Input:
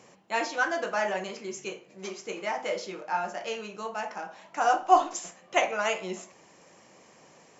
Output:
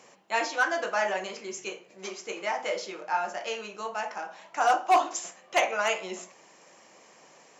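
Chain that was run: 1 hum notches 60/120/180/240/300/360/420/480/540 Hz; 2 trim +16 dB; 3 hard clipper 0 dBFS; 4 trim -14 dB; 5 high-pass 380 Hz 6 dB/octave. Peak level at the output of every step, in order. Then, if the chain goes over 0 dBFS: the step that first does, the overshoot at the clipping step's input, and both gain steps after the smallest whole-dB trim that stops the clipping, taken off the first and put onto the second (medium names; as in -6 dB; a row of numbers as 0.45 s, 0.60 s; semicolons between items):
-6.5 dBFS, +9.5 dBFS, 0.0 dBFS, -14.0 dBFS, -10.5 dBFS; step 2, 9.5 dB; step 2 +6 dB, step 4 -4 dB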